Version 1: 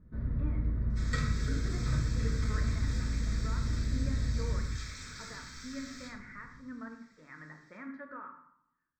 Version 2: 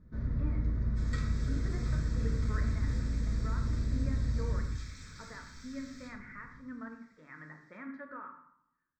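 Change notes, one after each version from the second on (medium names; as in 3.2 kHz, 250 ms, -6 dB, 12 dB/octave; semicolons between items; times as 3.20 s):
first sound: remove distance through air 230 m; second sound -7.0 dB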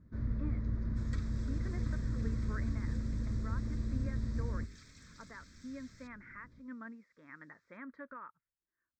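reverb: off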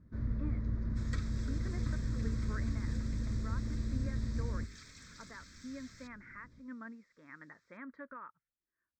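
second sound +5.0 dB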